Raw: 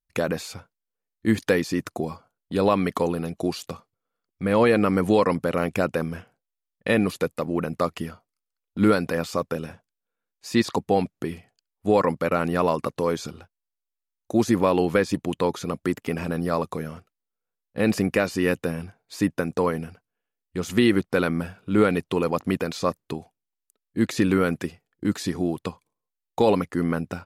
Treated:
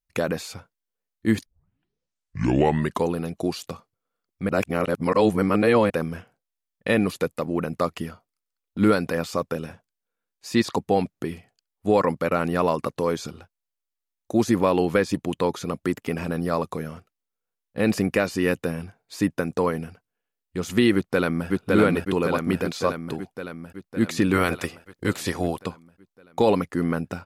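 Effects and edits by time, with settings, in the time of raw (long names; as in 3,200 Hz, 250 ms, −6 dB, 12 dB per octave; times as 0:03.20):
0:01.46: tape start 1.61 s
0:04.49–0:05.90: reverse
0:20.94–0:21.48: delay throw 560 ms, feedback 65%, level −1 dB
0:24.33–0:25.62: ceiling on every frequency bin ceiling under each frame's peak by 15 dB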